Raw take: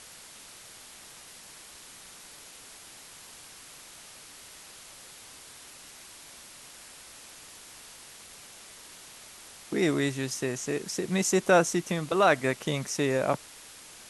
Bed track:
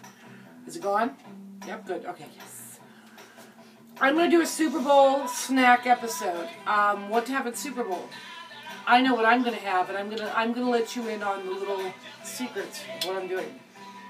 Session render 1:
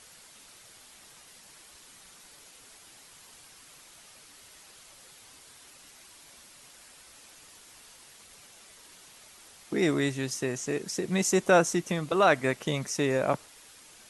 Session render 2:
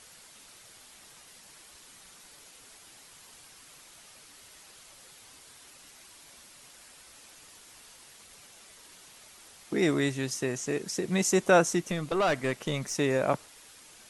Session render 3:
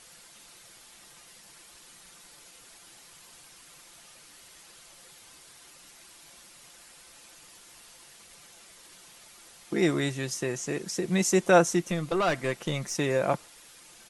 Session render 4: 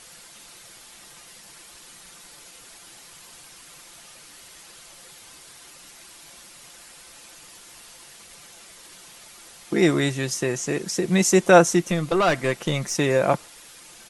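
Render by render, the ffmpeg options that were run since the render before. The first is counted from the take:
-af "afftdn=nr=6:nf=-49"
-filter_complex "[0:a]asettb=1/sr,asplit=3[a][b][c];[a]atrim=end=11.804[d];[b]atrim=start=11.8:end=12.95,asetpts=PTS-STARTPTS,afade=t=in:d=0.004:c=qsin,afade=t=out:st=1.146:d=0.004:c=qsin,aeval=exprs='(tanh(11.2*val(0)+0.25)-tanh(0.25))/11.2':c=same[e];[c]atrim=start=12.946[f];[d][e]acrossfade=d=0.004:c1=hsin:c2=qsin[g];[g][f]acrossfade=d=0.004:c1=qsin:c2=hsin"
-af "aecho=1:1:5.8:0.35"
-af "volume=6dB"

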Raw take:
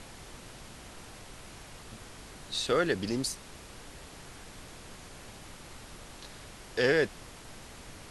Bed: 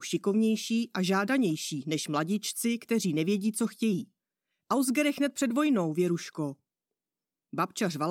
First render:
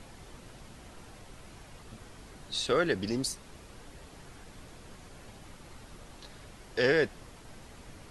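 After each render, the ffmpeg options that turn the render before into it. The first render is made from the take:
-af "afftdn=nr=6:nf=-49"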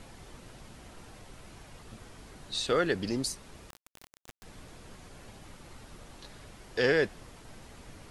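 -filter_complex "[0:a]asettb=1/sr,asplit=3[a][b][c];[a]atrim=end=3.704[d];[b]atrim=start=3.7:end=4.43,asetpts=PTS-STARTPTS,afade=t=in:d=0.004:c=qsin,afade=t=out:st=0.726:d=0.004:c=qsin,acrusher=bits=4:dc=4:mix=0:aa=0.000001[e];[c]atrim=start=4.426[f];[d][e]acrossfade=d=0.004:c1=hsin:c2=qsin[g];[g][f]acrossfade=d=0.004:c1=qsin:c2=hsin"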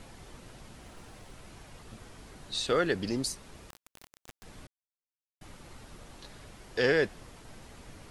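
-filter_complex "[0:a]asettb=1/sr,asplit=3[a][b][c];[a]atrim=end=0.814[d];[b]atrim=start=0.81:end=1.33,asetpts=PTS-STARTPTS,afade=t=in:d=0.004:c=qsin,afade=t=out:st=0.516:d=0.004:c=qsin,acrusher=bits=7:mode=log:mix=0:aa=0.000001[e];[c]atrim=start=1.326[f];[d][e]acrossfade=d=0.004:c1=hsin:c2=qsin[g];[g][f]acrossfade=d=0.004:c1=qsin:c2=hsin,asplit=3[h][i][j];[h]atrim=end=4.67,asetpts=PTS-STARTPTS,afade=t=out:st=4.666:d=0.004:c=hsin[k];[i]atrim=start=4.67:end=5.41,asetpts=PTS-STARTPTS,volume=0[l];[j]atrim=start=5.41,asetpts=PTS-STARTPTS,afade=t=in:d=0.004:c=hsin[m];[k][l][m]concat=n=3:v=0:a=1"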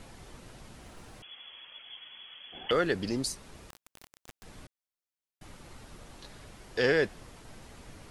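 -filter_complex "[0:a]asettb=1/sr,asplit=3[a][b][c];[a]atrim=end=1.224[d];[b]atrim=start=1.22:end=2.71,asetpts=PTS-STARTPTS,afade=t=in:d=0.004:c=qsin,afade=t=out:st=1.486:d=0.004:c=qsin,lowpass=f=2.9k:t=q:w=0.5098,lowpass=f=2.9k:t=q:w=0.6013,lowpass=f=2.9k:t=q:w=0.9,lowpass=f=2.9k:t=q:w=2.563,afreqshift=-3400[e];[c]atrim=start=2.706[f];[d][e]acrossfade=d=0.004:c1=hsin:c2=qsin[g];[g][f]acrossfade=d=0.004:c1=qsin:c2=hsin"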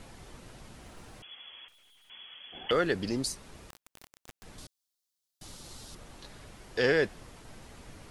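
-filter_complex "[0:a]asettb=1/sr,asplit=3[a][b][c];[a]atrim=end=1.684[d];[b]atrim=start=1.68:end=2.1,asetpts=PTS-STARTPTS,afade=t=in:d=0.004:c=qsin,afade=t=out:st=0.416:d=0.004:c=qsin,aeval=exprs='(tanh(1260*val(0)+0.7)-tanh(0.7))/1260':c=same[e];[c]atrim=start=2.096[f];[d][e]acrossfade=d=0.004:c1=hsin:c2=qsin[g];[g][f]acrossfade=d=0.004:c1=qsin:c2=hsin,asettb=1/sr,asplit=3[h][i][j];[h]atrim=end=4.584[k];[i]atrim=start=4.58:end=5.95,asetpts=PTS-STARTPTS,afade=t=in:d=0.004:c=qsin,afade=t=out:st=1.366:d=0.004:c=qsin,highshelf=f=3.1k:t=q:w=1.5:g=8.5[l];[j]atrim=start=5.946[m];[k][l]acrossfade=d=0.004:c1=hsin:c2=qsin[n];[n][m]acrossfade=d=0.004:c1=qsin:c2=hsin"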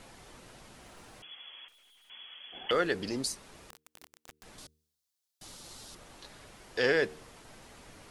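-af "lowshelf=f=210:g=-8,bandreject=f=76.6:t=h:w=4,bandreject=f=153.2:t=h:w=4,bandreject=f=229.8:t=h:w=4,bandreject=f=306.4:t=h:w=4,bandreject=f=383:t=h:w=4,bandreject=f=459.6:t=h:w=4"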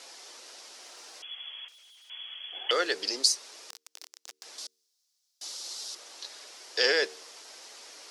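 -af "highpass=f=370:w=0.5412,highpass=f=370:w=1.3066,equalizer=f=5.3k:w=0.96:g=14.5"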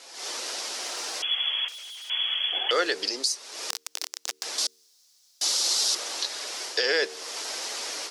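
-af "dynaudnorm=f=130:g=3:m=15dB,alimiter=limit=-12.5dB:level=0:latency=1:release=404"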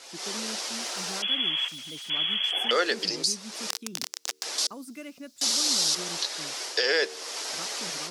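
-filter_complex "[1:a]volume=-15dB[a];[0:a][a]amix=inputs=2:normalize=0"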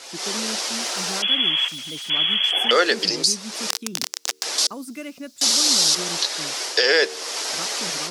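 -af "volume=7dB"

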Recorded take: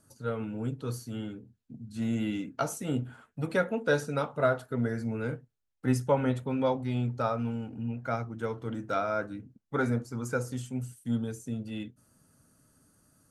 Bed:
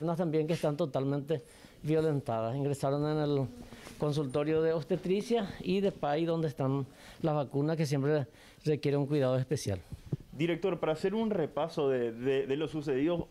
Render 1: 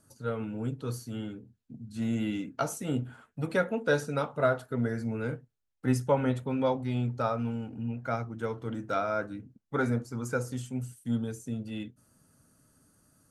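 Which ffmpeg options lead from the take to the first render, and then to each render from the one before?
-af anull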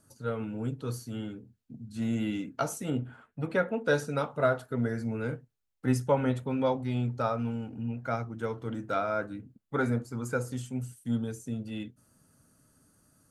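-filter_complex "[0:a]asettb=1/sr,asplit=3[a][b][c];[a]atrim=end=2.904[d];[b]atrim=start=2.9:end=3.85,asetpts=PTS-STARTPTS,afade=t=in:d=0.004:c=qsin,afade=t=out:st=0.946:d=0.004:c=qsin,bass=f=250:g=-1,treble=f=4k:g=-10[e];[c]atrim=start=3.846[f];[d][e]acrossfade=d=0.004:c1=hsin:c2=qsin[g];[g][f]acrossfade=d=0.004:c1=qsin:c2=hsin,asettb=1/sr,asplit=3[h][i][j];[h]atrim=end=8.864[k];[i]atrim=start=8.86:end=10.51,asetpts=PTS-STARTPTS,afade=t=in:d=0.004:c=qsin,afade=t=out:st=1.646:d=0.004:c=qsin,equalizer=f=5.7k:t=o:w=0.21:g=-6.5[l];[j]atrim=start=10.506[m];[k][l]acrossfade=d=0.004:c1=hsin:c2=qsin[n];[n][m]acrossfade=d=0.004:c1=qsin:c2=hsin"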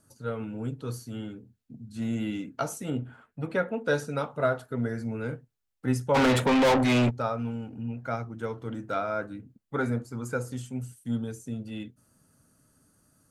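-filter_complex "[0:a]asplit=3[a][b][c];[a]afade=t=out:st=6.14:d=0.02[d];[b]asplit=2[e][f];[f]highpass=f=720:p=1,volume=34dB,asoftclip=type=tanh:threshold=-14.5dB[g];[e][g]amix=inputs=2:normalize=0,lowpass=f=5.6k:p=1,volume=-6dB,afade=t=in:st=6.14:d=0.02,afade=t=out:st=7.09:d=0.02[h];[c]afade=t=in:st=7.09:d=0.02[i];[d][h][i]amix=inputs=3:normalize=0"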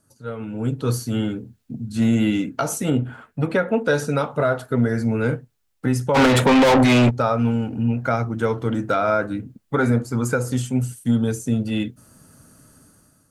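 -af "dynaudnorm=f=190:g=7:m=14dB,alimiter=limit=-10dB:level=0:latency=1:release=128"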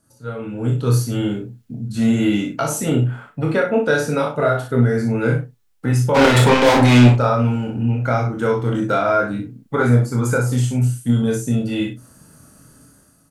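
-filter_complex "[0:a]asplit=2[a][b];[b]adelay=40,volume=-6.5dB[c];[a][c]amix=inputs=2:normalize=0,asplit=2[d][e];[e]aecho=0:1:25|58:0.596|0.447[f];[d][f]amix=inputs=2:normalize=0"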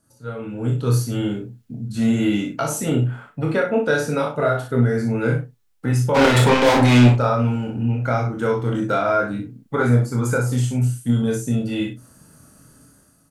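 -af "volume=-2dB"

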